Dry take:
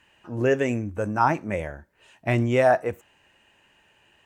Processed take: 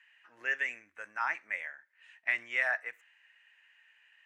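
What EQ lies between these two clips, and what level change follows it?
band-pass 1900 Hz, Q 3.9; tilt +3.5 dB/oct; 0.0 dB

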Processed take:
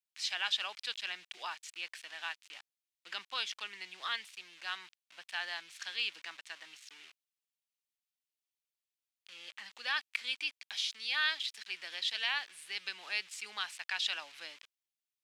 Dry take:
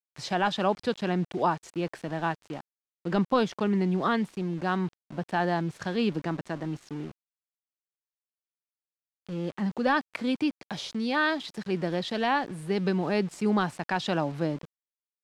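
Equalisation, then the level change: resonant high-pass 2600 Hz, resonance Q 1.5; 0.0 dB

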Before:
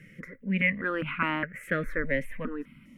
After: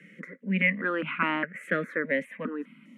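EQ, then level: steep high-pass 170 Hz 48 dB/oct; LPF 8000 Hz 12 dB/oct; bell 5200 Hz -8.5 dB 0.33 oct; +1.5 dB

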